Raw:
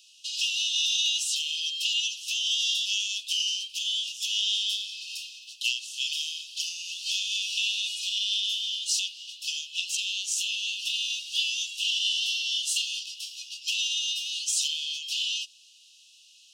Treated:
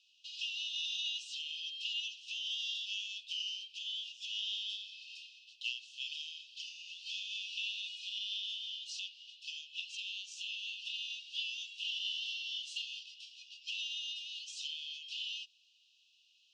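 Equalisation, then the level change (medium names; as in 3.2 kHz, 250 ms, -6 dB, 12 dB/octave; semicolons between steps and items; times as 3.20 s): tone controls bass -1 dB, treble +4 dB; tape spacing loss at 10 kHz 39 dB; 0.0 dB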